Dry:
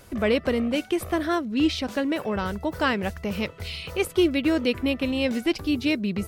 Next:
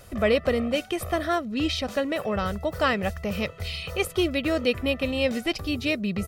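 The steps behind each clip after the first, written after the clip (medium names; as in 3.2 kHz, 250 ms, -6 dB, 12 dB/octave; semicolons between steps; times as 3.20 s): comb 1.6 ms, depth 46%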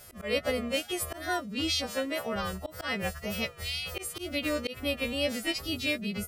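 partials quantised in pitch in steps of 2 st; wow and flutter 76 cents; slow attack 153 ms; trim -5.5 dB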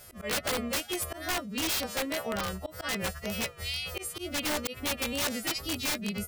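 integer overflow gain 23.5 dB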